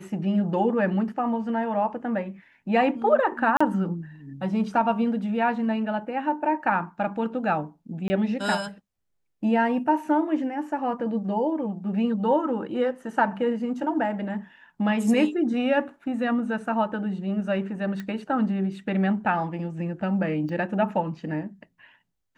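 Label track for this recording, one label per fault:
3.570000	3.600000	gap 35 ms
8.080000	8.100000	gap 20 ms
18.000000	18.000000	pop -21 dBFS
20.490000	20.490000	gap 2.4 ms

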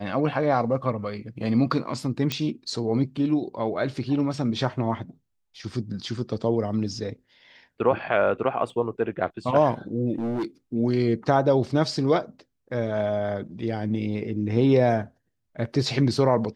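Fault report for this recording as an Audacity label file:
2.320000	2.320000	pop -11 dBFS
8.700000	8.700000	gap 2.4 ms
10.160000	10.450000	clipped -24 dBFS

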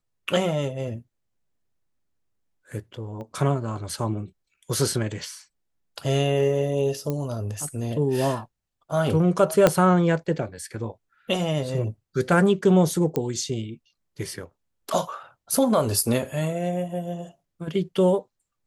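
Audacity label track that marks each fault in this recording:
3.210000	3.210000	pop -28 dBFS
7.100000	7.100000	pop -15 dBFS
9.670000	9.670000	pop -3 dBFS
13.160000	13.160000	pop -13 dBFS

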